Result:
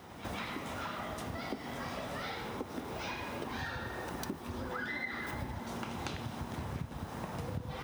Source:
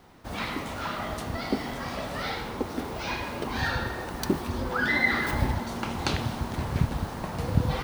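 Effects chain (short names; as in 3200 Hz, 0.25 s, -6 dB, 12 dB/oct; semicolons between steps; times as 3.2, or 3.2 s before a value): HPF 68 Hz; notch 4400 Hz, Q 12; reverse echo 0.152 s -19 dB; compressor 6:1, threshold -41 dBFS, peak gain reduction 22 dB; gain +3.5 dB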